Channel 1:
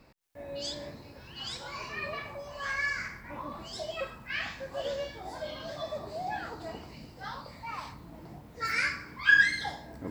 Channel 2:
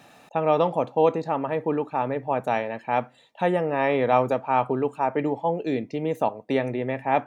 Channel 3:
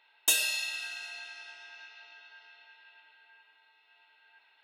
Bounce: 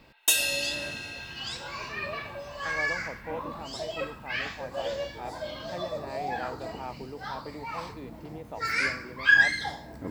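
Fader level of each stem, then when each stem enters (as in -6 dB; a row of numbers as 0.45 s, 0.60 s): +2.0 dB, -17.0 dB, +2.5 dB; 0.00 s, 2.30 s, 0.00 s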